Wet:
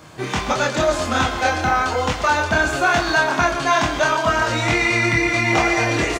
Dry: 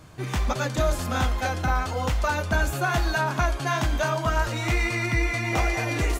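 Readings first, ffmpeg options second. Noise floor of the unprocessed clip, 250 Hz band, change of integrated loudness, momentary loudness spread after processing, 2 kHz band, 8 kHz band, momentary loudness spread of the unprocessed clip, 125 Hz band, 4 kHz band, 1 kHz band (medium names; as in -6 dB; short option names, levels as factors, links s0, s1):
-32 dBFS, +7.0 dB, +7.0 dB, 4 LU, +9.0 dB, +7.0 dB, 2 LU, 0.0 dB, +9.0 dB, +8.5 dB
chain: -filter_complex "[0:a]asplit=2[s0][s1];[s1]aecho=0:1:129:0.266[s2];[s0][s2]amix=inputs=2:normalize=0,acrossover=split=8800[s3][s4];[s4]acompressor=threshold=0.00141:ratio=4:attack=1:release=60[s5];[s3][s5]amix=inputs=2:normalize=0,equalizer=f=12000:w=1.6:g=-9,asoftclip=type=tanh:threshold=0.224,highpass=f=270:p=1,asplit=2[s6][s7];[s7]adelay=26,volume=0.708[s8];[s6][s8]amix=inputs=2:normalize=0,volume=2.51"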